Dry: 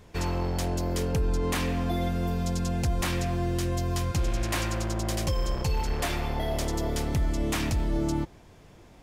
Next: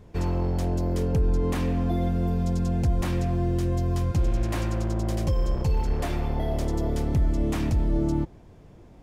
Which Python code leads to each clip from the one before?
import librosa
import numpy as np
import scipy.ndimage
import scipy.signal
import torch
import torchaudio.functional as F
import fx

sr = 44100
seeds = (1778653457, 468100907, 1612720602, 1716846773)

y = fx.tilt_shelf(x, sr, db=6.0, hz=910.0)
y = y * 10.0 ** (-2.0 / 20.0)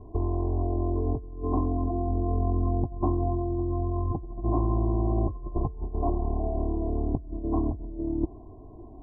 y = x + 0.82 * np.pad(x, (int(2.9 * sr / 1000.0), 0))[:len(x)]
y = fx.over_compress(y, sr, threshold_db=-24.0, ratio=-0.5)
y = scipy.signal.sosfilt(scipy.signal.cheby1(6, 3, 1100.0, 'lowpass', fs=sr, output='sos'), y)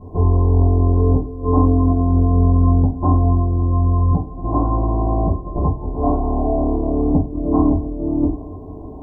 y = fx.echo_banded(x, sr, ms=268, feedback_pct=82, hz=400.0, wet_db=-19.5)
y = fx.rider(y, sr, range_db=10, speed_s=2.0)
y = fx.rev_fdn(y, sr, rt60_s=0.37, lf_ratio=0.95, hf_ratio=0.75, size_ms=34.0, drr_db=-6.5)
y = y * 10.0 ** (4.5 / 20.0)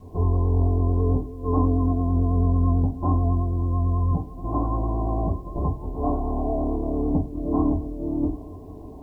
y = fx.quant_dither(x, sr, seeds[0], bits=10, dither='none')
y = fx.vibrato(y, sr, rate_hz=9.1, depth_cents=35.0)
y = y * 10.0 ** (-6.5 / 20.0)